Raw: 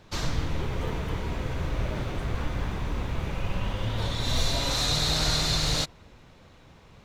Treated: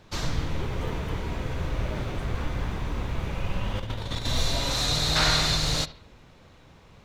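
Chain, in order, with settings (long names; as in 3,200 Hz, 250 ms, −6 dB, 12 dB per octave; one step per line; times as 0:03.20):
bucket-brigade delay 71 ms, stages 2,048, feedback 37%, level −17.5 dB
0:03.75–0:04.27: compressor whose output falls as the input rises −30 dBFS, ratio −0.5
0:05.15–0:05.55: parametric band 1,600 Hz +12 dB → +3 dB 2.2 octaves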